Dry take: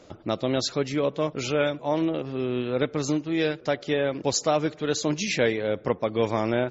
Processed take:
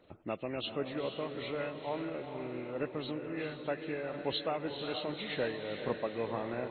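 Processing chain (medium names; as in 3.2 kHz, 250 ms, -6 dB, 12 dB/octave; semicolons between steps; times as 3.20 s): knee-point frequency compression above 1.4 kHz 1.5:1; harmonic-percussive split harmonic -6 dB; echo that smears into a reverb 460 ms, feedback 49%, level -6.5 dB; trim -9 dB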